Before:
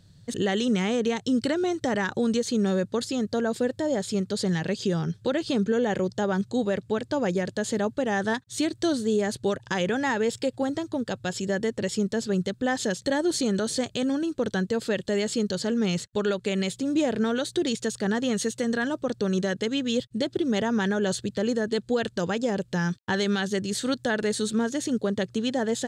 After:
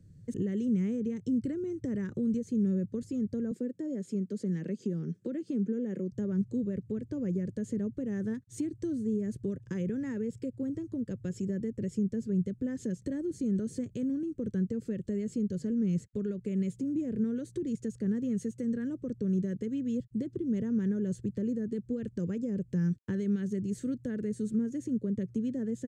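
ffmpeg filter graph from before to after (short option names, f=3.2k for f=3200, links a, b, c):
-filter_complex "[0:a]asettb=1/sr,asplit=3[a][b][c];[a]atrim=end=3.514[d];[b]atrim=start=3.51:end=6.12,asetpts=PTS-STARTPTS,afade=t=in:d=0.004:c=qsin,afade=t=out:st=2.606:d=0.004:c=qsin,highpass=f=190:w=0.5412,highpass=f=190:w=1.3066,highshelf=f=9.4k:g=-3.5[e];[c]atrim=start=6.116[f];[d][e]acrossfade=d=0.004:c1=hsin:c2=qsin[g];[g][f]acrossfade=d=0.004:c1=qsin:c2=hsin,firequalizer=gain_entry='entry(330,0);entry(510,-4);entry(750,-25);entry(1100,-17);entry(2100,-11);entry(3700,-25);entry(6200,-11)':delay=0.05:min_phase=1,acrossover=split=230[h][i];[i]acompressor=threshold=-41dB:ratio=3[j];[h][j]amix=inputs=2:normalize=0"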